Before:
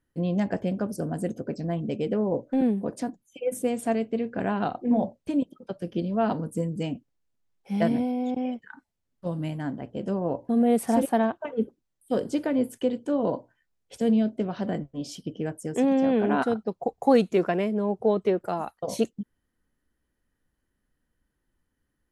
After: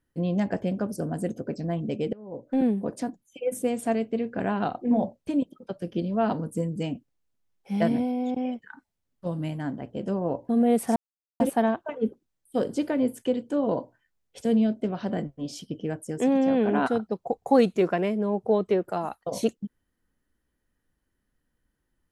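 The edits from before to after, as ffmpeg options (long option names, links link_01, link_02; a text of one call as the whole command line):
ffmpeg -i in.wav -filter_complex "[0:a]asplit=3[link_01][link_02][link_03];[link_01]atrim=end=2.13,asetpts=PTS-STARTPTS,afade=type=out:start_time=2.126:duration=0.004:curve=hsin:silence=0.0707946[link_04];[link_02]atrim=start=2.13:end=10.96,asetpts=PTS-STARTPTS,afade=type=in:duration=0.42:curve=qua:silence=0.0707946,afade=type=out:start_time=8.826:duration=0.004:curve=hsin,apad=pad_dur=0.44[link_05];[link_03]atrim=start=10.96,asetpts=PTS-STARTPTS,afade=type=in:duration=0.004:curve=hsin[link_06];[link_04][link_05][link_06]concat=n=3:v=0:a=1" out.wav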